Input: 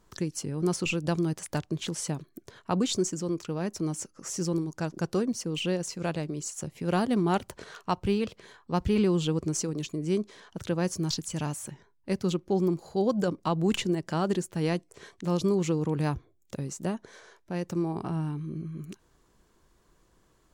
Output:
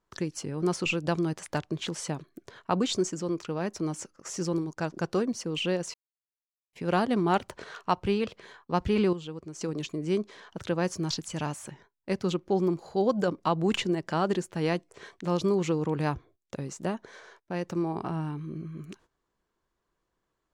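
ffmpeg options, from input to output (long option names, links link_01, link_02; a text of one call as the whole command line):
ffmpeg -i in.wav -filter_complex "[0:a]asettb=1/sr,asplit=3[link_01][link_02][link_03];[link_01]atrim=end=4.164[link_04];[link_02]atrim=start=4.16:end=4.77,asetpts=PTS-STARTPTS,afade=type=in:duration=0.004:curve=qsin,afade=type=out:start_time=0.606:duration=0.004:curve=qsin,agate=range=-12dB:threshold=-46dB:ratio=16:release=100:detection=peak[link_05];[link_03]atrim=start=4.766[link_06];[link_04][link_05]acrossfade=duration=0.004:curve1=hsin:curve2=qsin[link_07];[link_07][link_06]acrossfade=duration=0.004:curve1=qsin:curve2=hsin,asplit=5[link_08][link_09][link_10][link_11][link_12];[link_08]atrim=end=5.94,asetpts=PTS-STARTPTS,afade=type=out:start_time=5.936:duration=0.004:curve=hsin[link_13];[link_09]atrim=start=5.94:end=6.73,asetpts=PTS-STARTPTS,volume=0[link_14];[link_10]atrim=start=6.73:end=9.132,asetpts=PTS-STARTPTS,afade=type=in:duration=0.004:curve=hsin[link_15];[link_11]atrim=start=9.128:end=9.612,asetpts=PTS-STARTPTS,volume=-11dB[link_16];[link_12]atrim=start=9.608[link_17];[link_13][link_14][link_15]concat=n=3:v=0:a=1[link_18];[link_18][link_16]acrossfade=duration=0.004:curve1=hsin:curve2=hsin[link_19];[link_19][link_17]acrossfade=duration=0.004:curve1=hsin:curve2=hsin,lowshelf=frequency=360:gain=-8,agate=range=-15dB:threshold=-59dB:ratio=16:detection=peak,aemphasis=mode=reproduction:type=50kf,volume=4.5dB" out.wav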